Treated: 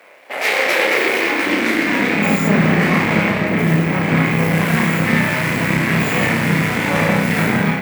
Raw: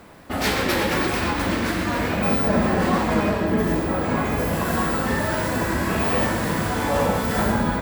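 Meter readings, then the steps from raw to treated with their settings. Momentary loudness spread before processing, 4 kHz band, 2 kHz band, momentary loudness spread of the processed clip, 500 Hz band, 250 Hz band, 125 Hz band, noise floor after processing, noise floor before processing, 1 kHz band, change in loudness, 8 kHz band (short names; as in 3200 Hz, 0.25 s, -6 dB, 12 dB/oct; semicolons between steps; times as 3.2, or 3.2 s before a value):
3 LU, +5.5 dB, +10.0 dB, 3 LU, +3.0 dB, +6.0 dB, +7.5 dB, -24 dBFS, -25 dBFS, +2.0 dB, +6.0 dB, +2.5 dB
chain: AGC gain up to 5 dB; half-wave rectifier; bell 2200 Hz +14 dB 0.73 oct; de-hum 47.15 Hz, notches 33; on a send: flutter echo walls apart 5.2 m, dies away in 0.29 s; on the sum: high-pass sweep 550 Hz -> 150 Hz, 0.58–2.82; low shelf 390 Hz +4 dB; gain -1 dB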